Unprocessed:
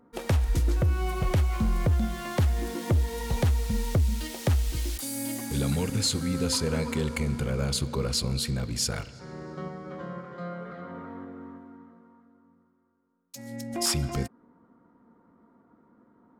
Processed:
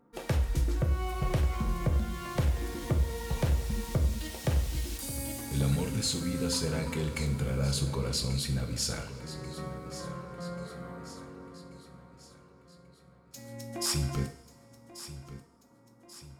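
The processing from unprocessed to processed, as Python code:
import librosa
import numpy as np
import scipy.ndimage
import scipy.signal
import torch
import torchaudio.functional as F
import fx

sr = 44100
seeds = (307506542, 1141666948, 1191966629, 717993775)

y = fx.echo_feedback(x, sr, ms=1137, feedback_pct=51, wet_db=-14)
y = fx.rev_double_slope(y, sr, seeds[0], early_s=0.46, late_s=2.2, knee_db=-21, drr_db=4.0)
y = F.gain(torch.from_numpy(y), -5.0).numpy()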